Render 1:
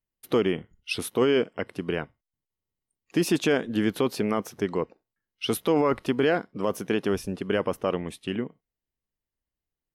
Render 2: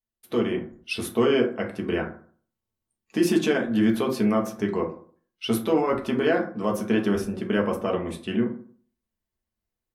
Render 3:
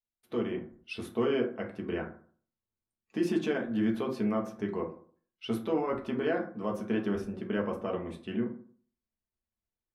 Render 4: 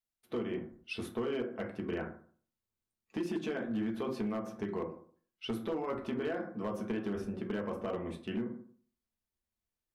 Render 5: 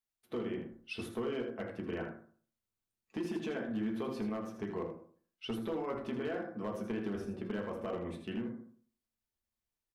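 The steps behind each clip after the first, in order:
reverb RT60 0.50 s, pre-delay 5 ms, DRR -0.5 dB; AGC gain up to 7 dB; gain -7 dB
LPF 2900 Hz 6 dB/oct; gain -7.5 dB
compressor 6:1, threshold -31 dBFS, peak gain reduction 8 dB; hard clip -28.5 dBFS, distortion -20 dB
echo 80 ms -8.5 dB; gain -2 dB

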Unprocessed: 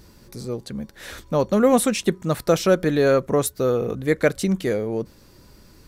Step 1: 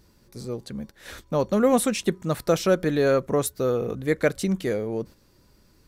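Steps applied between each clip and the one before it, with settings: gate -38 dBFS, range -6 dB; gain -3 dB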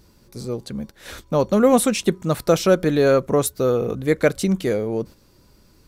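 bell 1800 Hz -3.5 dB 0.32 oct; gain +4.5 dB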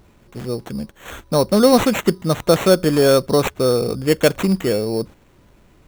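sample-rate reducer 4900 Hz, jitter 0%; gain +2.5 dB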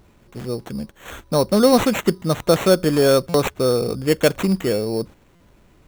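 stuck buffer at 3.29/5.35, samples 256, times 8; gain -1.5 dB

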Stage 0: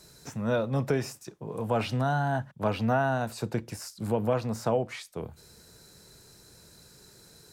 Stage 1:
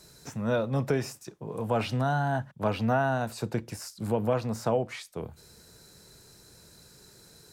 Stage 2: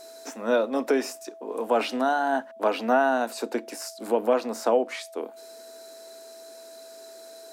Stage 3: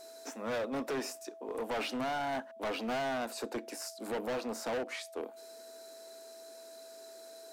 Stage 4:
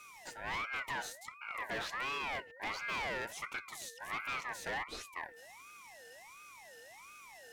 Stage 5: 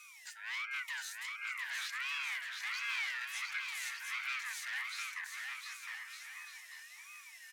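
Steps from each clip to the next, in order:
nothing audible
elliptic high-pass 250 Hz, stop band 40 dB; whine 660 Hz -49 dBFS; gain +5.5 dB
hard clip -26.5 dBFS, distortion -5 dB; gain -5.5 dB
ring modulator with a swept carrier 1500 Hz, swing 25%, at 1.4 Hz; gain -1 dB
HPF 1500 Hz 24 dB/oct; on a send: bouncing-ball echo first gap 0.71 s, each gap 0.7×, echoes 5; on the sum: gain +1 dB

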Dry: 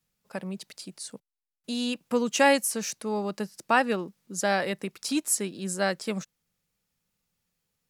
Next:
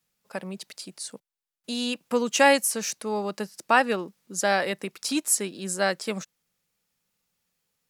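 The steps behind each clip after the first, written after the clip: low shelf 180 Hz -10 dB; gain +3 dB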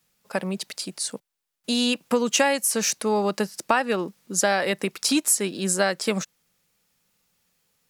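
compressor 5:1, threshold -25 dBFS, peak gain reduction 12 dB; gain +7.5 dB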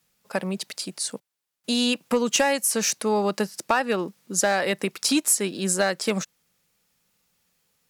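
one-sided clip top -12 dBFS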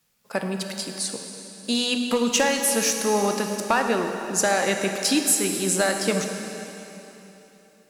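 reverb RT60 3.4 s, pre-delay 7 ms, DRR 3.5 dB

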